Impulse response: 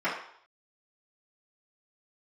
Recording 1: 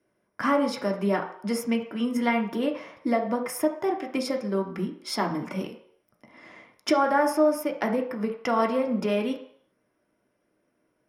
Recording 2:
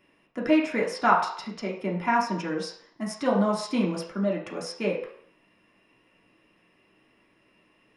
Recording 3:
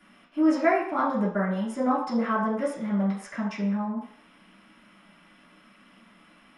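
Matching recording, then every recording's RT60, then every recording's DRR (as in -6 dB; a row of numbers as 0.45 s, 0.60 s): 3; 0.65 s, 0.65 s, 0.65 s; 2.0 dB, -3.5 dB, -11.5 dB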